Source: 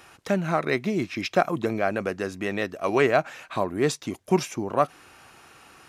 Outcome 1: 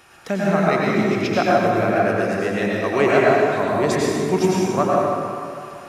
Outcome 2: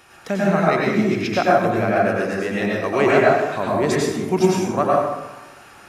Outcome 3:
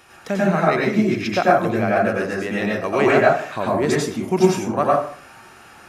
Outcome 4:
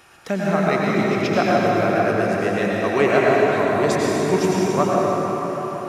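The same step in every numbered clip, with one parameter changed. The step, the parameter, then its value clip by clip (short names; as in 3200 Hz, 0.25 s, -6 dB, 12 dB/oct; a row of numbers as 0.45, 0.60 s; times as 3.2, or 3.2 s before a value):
plate-style reverb, RT60: 2.5, 1.1, 0.51, 5.2 s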